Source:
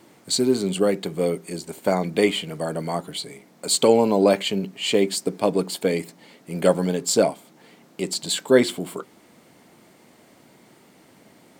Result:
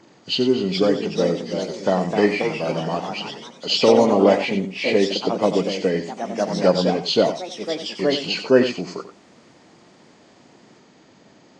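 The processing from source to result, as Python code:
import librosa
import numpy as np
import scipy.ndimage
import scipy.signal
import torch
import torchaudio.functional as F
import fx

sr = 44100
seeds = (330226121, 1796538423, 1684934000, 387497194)

y = fx.freq_compress(x, sr, knee_hz=1400.0, ratio=1.5)
y = fx.echo_pitch(y, sr, ms=462, semitones=2, count=3, db_per_echo=-6.0)
y = y + 10.0 ** (-11.0 / 20.0) * np.pad(y, (int(92 * sr / 1000.0), 0))[:len(y)]
y = y * 10.0 ** (1.0 / 20.0)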